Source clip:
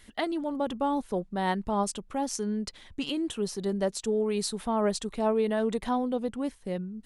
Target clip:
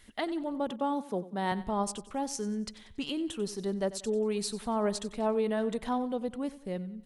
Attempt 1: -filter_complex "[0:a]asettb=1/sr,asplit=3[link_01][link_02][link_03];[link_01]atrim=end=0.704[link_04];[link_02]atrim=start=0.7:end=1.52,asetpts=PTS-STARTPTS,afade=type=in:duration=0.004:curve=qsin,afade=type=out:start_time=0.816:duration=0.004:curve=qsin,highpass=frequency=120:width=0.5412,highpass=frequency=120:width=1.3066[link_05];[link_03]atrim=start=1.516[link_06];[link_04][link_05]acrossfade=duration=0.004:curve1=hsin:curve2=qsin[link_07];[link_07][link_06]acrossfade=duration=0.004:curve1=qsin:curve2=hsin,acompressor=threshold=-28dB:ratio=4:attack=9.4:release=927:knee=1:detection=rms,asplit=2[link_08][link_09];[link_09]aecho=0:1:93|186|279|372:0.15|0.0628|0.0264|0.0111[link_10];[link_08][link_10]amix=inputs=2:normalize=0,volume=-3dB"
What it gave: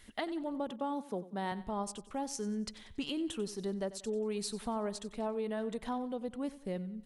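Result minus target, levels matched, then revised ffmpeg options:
downward compressor: peak gain reduction +8.5 dB
-filter_complex "[0:a]asettb=1/sr,asplit=3[link_01][link_02][link_03];[link_01]atrim=end=0.704[link_04];[link_02]atrim=start=0.7:end=1.52,asetpts=PTS-STARTPTS,afade=type=in:duration=0.004:curve=qsin,afade=type=out:start_time=0.816:duration=0.004:curve=qsin,highpass=frequency=120:width=0.5412,highpass=frequency=120:width=1.3066[link_05];[link_03]atrim=start=1.516[link_06];[link_04][link_05]acrossfade=duration=0.004:curve1=hsin:curve2=qsin[link_07];[link_07][link_06]acrossfade=duration=0.004:curve1=qsin:curve2=hsin,asplit=2[link_08][link_09];[link_09]aecho=0:1:93|186|279|372:0.15|0.0628|0.0264|0.0111[link_10];[link_08][link_10]amix=inputs=2:normalize=0,volume=-3dB"

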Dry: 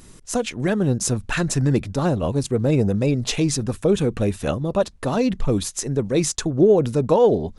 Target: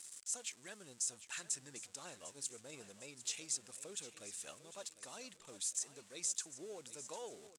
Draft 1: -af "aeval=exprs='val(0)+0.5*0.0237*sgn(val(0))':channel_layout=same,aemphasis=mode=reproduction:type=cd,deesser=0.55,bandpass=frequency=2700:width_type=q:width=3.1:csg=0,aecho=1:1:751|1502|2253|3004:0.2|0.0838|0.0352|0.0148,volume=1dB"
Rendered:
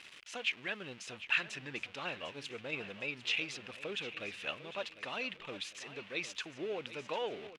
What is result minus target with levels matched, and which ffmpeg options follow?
8,000 Hz band −18.0 dB
-af "aeval=exprs='val(0)+0.5*0.0237*sgn(val(0))':channel_layout=same,aemphasis=mode=reproduction:type=cd,deesser=0.55,bandpass=frequency=8000:width_type=q:width=3.1:csg=0,aecho=1:1:751|1502|2253|3004:0.2|0.0838|0.0352|0.0148,volume=1dB"

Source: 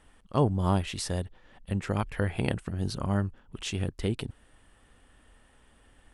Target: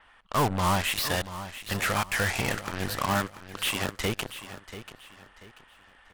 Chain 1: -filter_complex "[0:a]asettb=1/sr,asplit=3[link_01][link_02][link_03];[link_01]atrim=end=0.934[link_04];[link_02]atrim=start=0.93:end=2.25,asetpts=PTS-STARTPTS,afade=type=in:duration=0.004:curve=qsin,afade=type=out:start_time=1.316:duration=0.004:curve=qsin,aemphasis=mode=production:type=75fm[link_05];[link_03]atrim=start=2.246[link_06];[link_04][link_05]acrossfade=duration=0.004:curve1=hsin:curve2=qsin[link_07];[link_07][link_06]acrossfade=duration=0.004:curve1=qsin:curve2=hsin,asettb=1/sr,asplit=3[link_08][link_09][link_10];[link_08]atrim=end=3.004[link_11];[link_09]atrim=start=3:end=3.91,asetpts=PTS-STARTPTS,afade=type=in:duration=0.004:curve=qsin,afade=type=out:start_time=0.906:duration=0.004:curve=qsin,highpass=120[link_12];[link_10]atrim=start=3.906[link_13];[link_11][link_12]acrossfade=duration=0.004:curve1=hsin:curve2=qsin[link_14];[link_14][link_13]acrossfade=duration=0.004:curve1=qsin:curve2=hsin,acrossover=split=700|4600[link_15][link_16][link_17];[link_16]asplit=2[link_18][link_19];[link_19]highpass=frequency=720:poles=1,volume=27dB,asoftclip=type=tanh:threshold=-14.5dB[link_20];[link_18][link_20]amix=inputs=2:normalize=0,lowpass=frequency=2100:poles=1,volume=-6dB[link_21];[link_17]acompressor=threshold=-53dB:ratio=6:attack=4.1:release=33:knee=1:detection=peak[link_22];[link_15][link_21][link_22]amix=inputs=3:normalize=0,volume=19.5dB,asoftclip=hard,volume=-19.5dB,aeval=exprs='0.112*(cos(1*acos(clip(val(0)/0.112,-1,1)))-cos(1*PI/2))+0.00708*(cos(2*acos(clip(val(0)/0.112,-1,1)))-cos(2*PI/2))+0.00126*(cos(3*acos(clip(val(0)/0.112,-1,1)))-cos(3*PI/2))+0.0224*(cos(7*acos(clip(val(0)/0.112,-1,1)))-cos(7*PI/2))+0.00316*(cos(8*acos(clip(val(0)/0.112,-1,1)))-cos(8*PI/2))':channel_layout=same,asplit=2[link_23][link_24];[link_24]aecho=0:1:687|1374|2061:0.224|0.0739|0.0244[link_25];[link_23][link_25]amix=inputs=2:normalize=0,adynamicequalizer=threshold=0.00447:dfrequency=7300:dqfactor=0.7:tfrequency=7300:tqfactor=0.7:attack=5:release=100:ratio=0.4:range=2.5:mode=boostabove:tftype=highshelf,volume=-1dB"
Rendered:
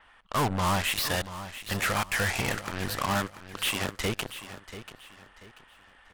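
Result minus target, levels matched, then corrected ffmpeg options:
gain into a clipping stage and back: distortion +34 dB
-filter_complex "[0:a]asettb=1/sr,asplit=3[link_01][link_02][link_03];[link_01]atrim=end=0.934[link_04];[link_02]atrim=start=0.93:end=2.25,asetpts=PTS-STARTPTS,afade=type=in:duration=0.004:curve=qsin,afade=type=out:start_time=1.316:duration=0.004:curve=qsin,aemphasis=mode=production:type=75fm[link_05];[link_03]atrim=start=2.246[link_06];[link_04][link_05]acrossfade=duration=0.004:curve1=hsin:curve2=qsin[link_07];[link_07][link_06]acrossfade=duration=0.004:curve1=qsin:curve2=hsin,asettb=1/sr,asplit=3[link_08][link_09][link_10];[link_08]atrim=end=3.004[link_11];[link_09]atrim=start=3:end=3.91,asetpts=PTS-STARTPTS,afade=type=in:duration=0.004:curve=qsin,afade=type=out:start_time=0.906:duration=0.004:curve=qsin,highpass=120[link_12];[link_10]atrim=start=3.906[link_13];[link_11][link_12]acrossfade=duration=0.004:curve1=hsin:curve2=qsin[link_14];[link_14][link_13]acrossfade=duration=0.004:curve1=qsin:curve2=hsin,acrossover=split=700|4600[link_15][link_16][link_17];[link_16]asplit=2[link_18][link_19];[link_19]highpass=frequency=720:poles=1,volume=27dB,asoftclip=type=tanh:threshold=-14.5dB[link_20];[link_18][link_20]amix=inputs=2:normalize=0,lowpass=frequency=2100:poles=1,volume=-6dB[link_21];[link_17]acompressor=threshold=-53dB:ratio=6:attack=4.1:release=33:knee=1:detection=peak[link_22];[link_15][link_21][link_22]amix=inputs=3:normalize=0,volume=10.5dB,asoftclip=hard,volume=-10.5dB,aeval=exprs='0.112*(cos(1*acos(clip(val(0)/0.112,-1,1)))-cos(1*PI/2))+0.00708*(cos(2*acos(clip(val(0)/0.112,-1,1)))-cos(2*PI/2))+0.00126*(cos(3*acos(clip(val(0)/0.112,-1,1)))-cos(3*PI/2))+0.0224*(cos(7*acos(clip(val(0)/0.112,-1,1)))-cos(7*PI/2))+0.00316*(cos(8*acos(clip(val(0)/0.112,-1,1)))-cos(8*PI/2))':channel_layout=same,asplit=2[link_23][link_24];[link_24]aecho=0:1:687|1374|2061:0.224|0.0739|0.0244[link_25];[link_23][link_25]amix=inputs=2:normalize=0,adynamicequalizer=threshold=0.00447:dfrequency=7300:dqfactor=0.7:tfrequency=7300:tqfactor=0.7:attack=5:release=100:ratio=0.4:range=2.5:mode=boostabove:tftype=highshelf,volume=-1dB"

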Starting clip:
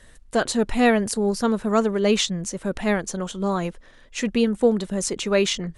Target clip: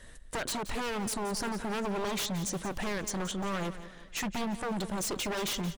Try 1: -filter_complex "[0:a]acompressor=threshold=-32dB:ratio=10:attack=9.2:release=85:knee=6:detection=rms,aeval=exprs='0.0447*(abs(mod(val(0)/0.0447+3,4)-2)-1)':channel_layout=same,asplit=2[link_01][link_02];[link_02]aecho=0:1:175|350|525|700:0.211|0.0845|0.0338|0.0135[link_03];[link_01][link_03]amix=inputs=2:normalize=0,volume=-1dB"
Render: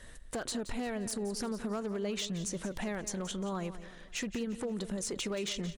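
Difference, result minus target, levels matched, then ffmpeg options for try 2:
downward compressor: peak gain reduction +7.5 dB
-filter_complex "[0:a]acompressor=threshold=-23.5dB:ratio=10:attack=9.2:release=85:knee=6:detection=rms,aeval=exprs='0.0447*(abs(mod(val(0)/0.0447+3,4)-2)-1)':channel_layout=same,asplit=2[link_01][link_02];[link_02]aecho=0:1:175|350|525|700:0.211|0.0845|0.0338|0.0135[link_03];[link_01][link_03]amix=inputs=2:normalize=0,volume=-1dB"

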